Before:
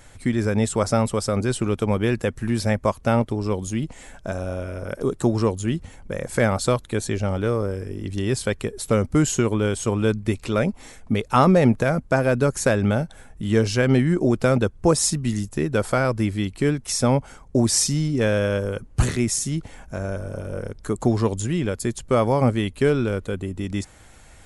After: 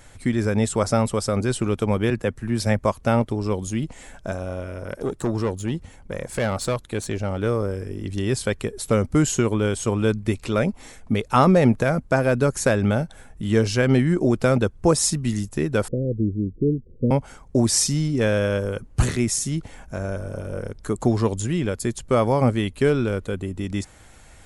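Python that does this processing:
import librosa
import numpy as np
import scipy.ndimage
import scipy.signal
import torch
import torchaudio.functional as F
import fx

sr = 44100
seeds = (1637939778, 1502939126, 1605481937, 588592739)

y = fx.band_widen(x, sr, depth_pct=70, at=(2.1, 2.79))
y = fx.tube_stage(y, sr, drive_db=17.0, bias=0.5, at=(4.35, 7.42))
y = fx.steep_lowpass(y, sr, hz=510.0, slope=72, at=(15.88, 17.11))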